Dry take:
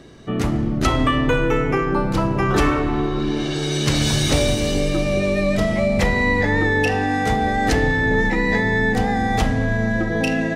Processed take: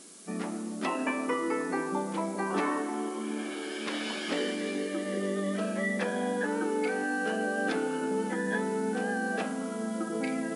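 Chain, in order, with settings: formant shift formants -3 st; tone controls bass -4 dB, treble -12 dB; added noise violet -34 dBFS; FFT band-pass 170–11000 Hz; trim -9 dB

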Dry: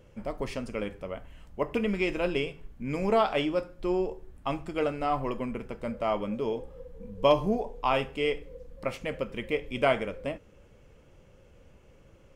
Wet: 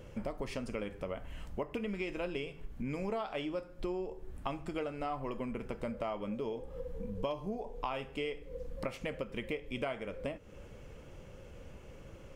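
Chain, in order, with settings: compression 6:1, threshold -41 dBFS, peak gain reduction 22.5 dB; trim +5.5 dB

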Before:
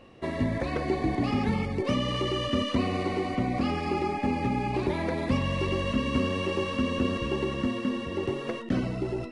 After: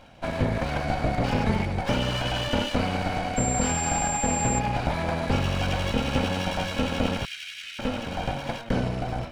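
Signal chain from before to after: comb filter that takes the minimum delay 1.3 ms; 3.36–4.58 s: whistle 7.4 kHz -32 dBFS; 7.25–7.79 s: inverse Chebyshev high-pass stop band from 950 Hz, stop band 40 dB; trim +4 dB

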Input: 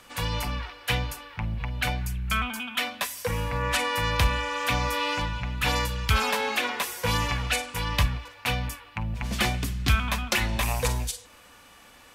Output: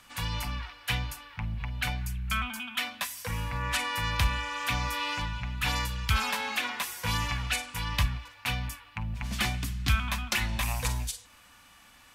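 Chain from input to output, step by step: peaking EQ 450 Hz -11 dB 0.96 oct; trim -3 dB

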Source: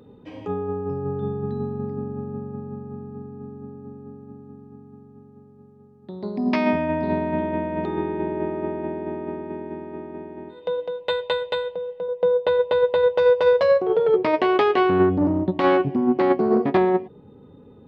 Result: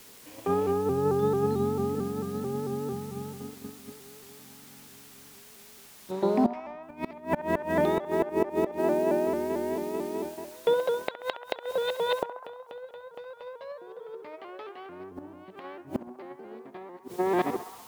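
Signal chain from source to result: chunks repeated in reverse 488 ms, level -9 dB; gate -35 dBFS, range -12 dB; bass shelf 250 Hz -10.5 dB; in parallel at -3 dB: word length cut 8-bit, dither triangular; 6.11–6.83 s: on the sum: overdrive pedal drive 17 dB, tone 1 kHz, clips at -5 dBFS; inverted gate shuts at -13 dBFS, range -27 dB; on a send: band-passed feedback delay 66 ms, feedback 77%, band-pass 1.1 kHz, level -10 dB; on the sum: vibrato with a chosen wave saw up 4.5 Hz, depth 100 cents

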